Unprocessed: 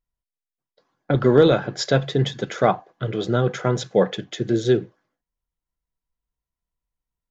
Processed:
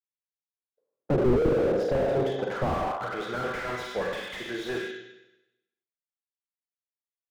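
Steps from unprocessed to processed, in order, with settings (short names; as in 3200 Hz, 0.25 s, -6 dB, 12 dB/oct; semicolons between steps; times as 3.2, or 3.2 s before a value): gate with hold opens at -42 dBFS; band-pass sweep 430 Hz -> 2200 Hz, 1.58–3.65; Schroeder reverb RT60 0.94 s, combs from 33 ms, DRR 1.5 dB; slew limiter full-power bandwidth 14 Hz; gain +8 dB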